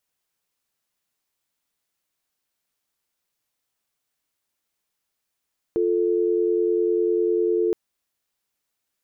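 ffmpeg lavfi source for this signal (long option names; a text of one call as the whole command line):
ffmpeg -f lavfi -i "aevalsrc='0.0891*(sin(2*PI*350*t)+sin(2*PI*440*t))':duration=1.97:sample_rate=44100" out.wav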